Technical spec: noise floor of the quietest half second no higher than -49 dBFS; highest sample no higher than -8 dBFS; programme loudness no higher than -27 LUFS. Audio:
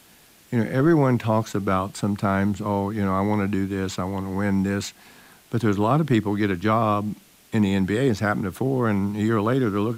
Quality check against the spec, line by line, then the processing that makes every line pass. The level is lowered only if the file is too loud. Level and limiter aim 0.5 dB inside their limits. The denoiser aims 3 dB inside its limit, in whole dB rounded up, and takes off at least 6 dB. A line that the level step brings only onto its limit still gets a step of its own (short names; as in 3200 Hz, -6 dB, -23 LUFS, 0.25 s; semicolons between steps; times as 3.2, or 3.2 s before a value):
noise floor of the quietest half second -53 dBFS: OK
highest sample -10.0 dBFS: OK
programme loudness -23.0 LUFS: fail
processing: gain -4.5 dB